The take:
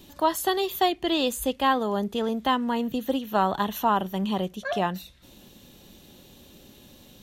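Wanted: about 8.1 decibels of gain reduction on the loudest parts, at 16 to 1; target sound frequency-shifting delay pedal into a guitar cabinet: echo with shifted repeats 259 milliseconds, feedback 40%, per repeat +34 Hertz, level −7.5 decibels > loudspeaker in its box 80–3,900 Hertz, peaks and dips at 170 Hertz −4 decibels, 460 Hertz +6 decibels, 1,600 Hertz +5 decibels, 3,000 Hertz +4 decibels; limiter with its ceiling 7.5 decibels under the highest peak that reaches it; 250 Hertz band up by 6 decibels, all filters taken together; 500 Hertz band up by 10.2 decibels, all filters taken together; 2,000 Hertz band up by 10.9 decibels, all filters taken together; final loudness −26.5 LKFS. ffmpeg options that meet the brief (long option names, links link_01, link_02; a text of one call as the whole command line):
ffmpeg -i in.wav -filter_complex "[0:a]equalizer=frequency=250:width_type=o:gain=5.5,equalizer=frequency=500:width_type=o:gain=7,equalizer=frequency=2000:width_type=o:gain=9,acompressor=threshold=-20dB:ratio=16,alimiter=limit=-18dB:level=0:latency=1,asplit=6[link_01][link_02][link_03][link_04][link_05][link_06];[link_02]adelay=259,afreqshift=34,volume=-7.5dB[link_07];[link_03]adelay=518,afreqshift=68,volume=-15.5dB[link_08];[link_04]adelay=777,afreqshift=102,volume=-23.4dB[link_09];[link_05]adelay=1036,afreqshift=136,volume=-31.4dB[link_10];[link_06]adelay=1295,afreqshift=170,volume=-39.3dB[link_11];[link_01][link_07][link_08][link_09][link_10][link_11]amix=inputs=6:normalize=0,highpass=80,equalizer=frequency=170:width_type=q:width=4:gain=-4,equalizer=frequency=460:width_type=q:width=4:gain=6,equalizer=frequency=1600:width_type=q:width=4:gain=5,equalizer=frequency=3000:width_type=q:width=4:gain=4,lowpass=frequency=3900:width=0.5412,lowpass=frequency=3900:width=1.3066,volume=-1dB" out.wav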